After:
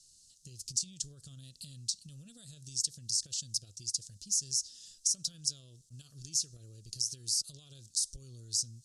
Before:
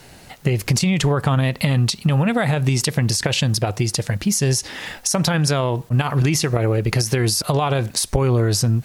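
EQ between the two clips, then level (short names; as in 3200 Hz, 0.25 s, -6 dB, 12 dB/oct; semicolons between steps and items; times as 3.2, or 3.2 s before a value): inverse Chebyshev high-pass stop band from 2300 Hz, stop band 50 dB; LPF 9100 Hz 24 dB/oct; tilt -4 dB/oct; +6.0 dB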